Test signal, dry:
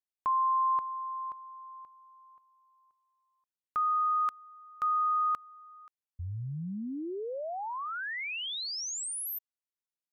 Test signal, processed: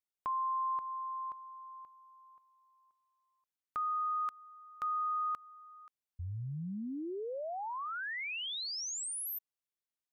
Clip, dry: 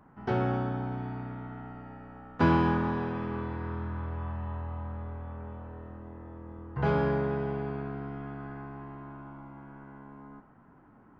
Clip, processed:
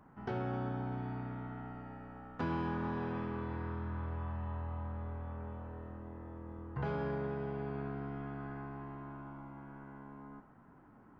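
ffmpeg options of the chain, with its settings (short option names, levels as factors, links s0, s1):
-af "acompressor=threshold=0.0355:ratio=6:attack=3.1:release=201:knee=6,volume=0.75"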